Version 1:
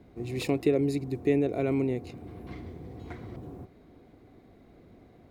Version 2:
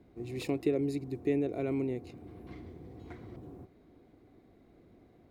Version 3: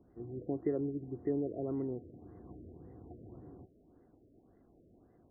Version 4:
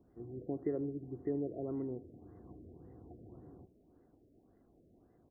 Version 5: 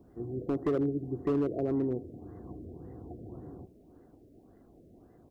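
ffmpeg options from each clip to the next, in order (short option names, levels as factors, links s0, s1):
-af "equalizer=f=330:t=o:w=0.53:g=3.5,volume=0.473"
-af "afftfilt=real='re*lt(b*sr/1024,650*pow(2100/650,0.5+0.5*sin(2*PI*1.8*pts/sr)))':imag='im*lt(b*sr/1024,650*pow(2100/650,0.5+0.5*sin(2*PI*1.8*pts/sr)))':win_size=1024:overlap=0.75,volume=0.631"
-filter_complex "[0:a]asplit=2[s0][s1];[s1]adelay=77,lowpass=f=1400:p=1,volume=0.141,asplit=2[s2][s3];[s3]adelay=77,lowpass=f=1400:p=1,volume=0.36,asplit=2[s4][s5];[s5]adelay=77,lowpass=f=1400:p=1,volume=0.36[s6];[s0][s2][s4][s6]amix=inputs=4:normalize=0,volume=0.75"
-af "volume=42.2,asoftclip=hard,volume=0.0237,volume=2.82"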